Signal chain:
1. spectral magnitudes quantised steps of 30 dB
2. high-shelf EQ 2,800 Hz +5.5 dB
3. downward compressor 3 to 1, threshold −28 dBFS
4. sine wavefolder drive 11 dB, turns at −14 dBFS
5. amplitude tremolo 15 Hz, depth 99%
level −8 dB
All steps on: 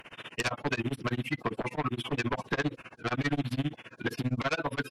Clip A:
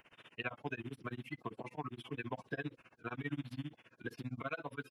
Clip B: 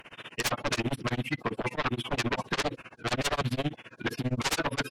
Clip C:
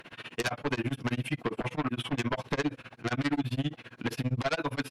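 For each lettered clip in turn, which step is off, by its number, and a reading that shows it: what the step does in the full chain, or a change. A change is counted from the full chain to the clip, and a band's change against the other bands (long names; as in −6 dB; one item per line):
4, distortion level −6 dB
3, 8 kHz band +8.5 dB
1, 2 kHz band −2.5 dB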